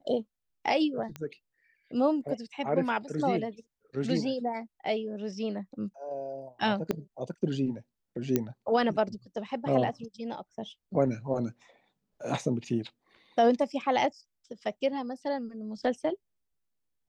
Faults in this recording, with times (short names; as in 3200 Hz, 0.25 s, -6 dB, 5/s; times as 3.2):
1.16 pop -23 dBFS
6.91 pop -16 dBFS
8.36 pop -12 dBFS